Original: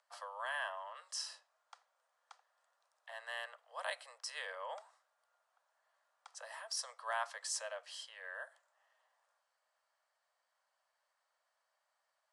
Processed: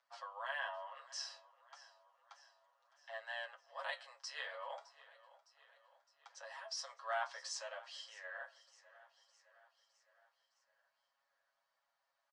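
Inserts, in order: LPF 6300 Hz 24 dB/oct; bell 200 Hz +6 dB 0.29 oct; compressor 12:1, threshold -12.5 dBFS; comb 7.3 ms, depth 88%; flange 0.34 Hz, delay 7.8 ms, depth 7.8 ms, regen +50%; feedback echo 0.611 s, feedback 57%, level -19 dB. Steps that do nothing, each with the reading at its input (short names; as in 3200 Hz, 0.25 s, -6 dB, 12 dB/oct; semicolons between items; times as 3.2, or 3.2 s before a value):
bell 200 Hz: input band starts at 430 Hz; compressor, threshold -12.5 dBFS: input peak -24.5 dBFS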